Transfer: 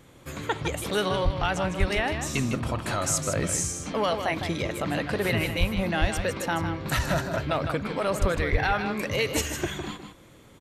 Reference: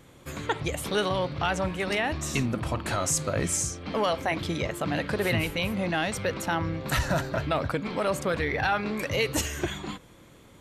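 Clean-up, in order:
high-pass at the plosives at 0:01.24/0:01.79/0:05.59/0:06.00/0:08.20/0:08.51
echo removal 156 ms −8 dB

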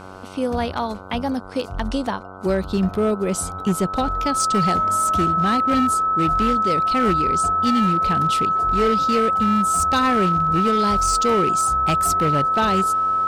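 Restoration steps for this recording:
clipped peaks rebuilt −13 dBFS
hum removal 94.1 Hz, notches 16
notch filter 1,300 Hz, Q 30

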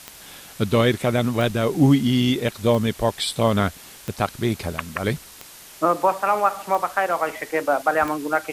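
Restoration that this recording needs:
click removal
noise reduction from a noise print 22 dB

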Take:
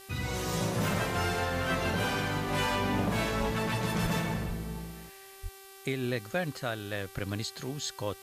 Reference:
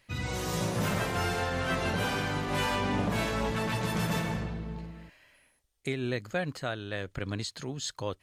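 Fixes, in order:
hum removal 388.9 Hz, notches 14
high-pass at the plosives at 0:03.39/0:04.02/0:04.47/0:05.42
noise reduction from a noise print 11 dB

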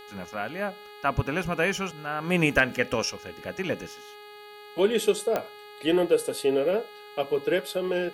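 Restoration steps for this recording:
click removal
hum removal 416.1 Hz, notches 11
downward expander −38 dBFS, range −21 dB

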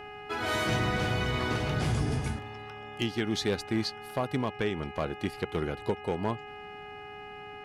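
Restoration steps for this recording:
clipped peaks rebuilt −20.5 dBFS
hum removal 415.3 Hz, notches 7
notch filter 760 Hz, Q 30

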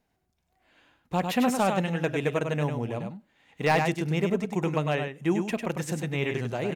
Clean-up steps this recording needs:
clipped peaks rebuilt −14.5 dBFS
echo removal 100 ms −6 dB

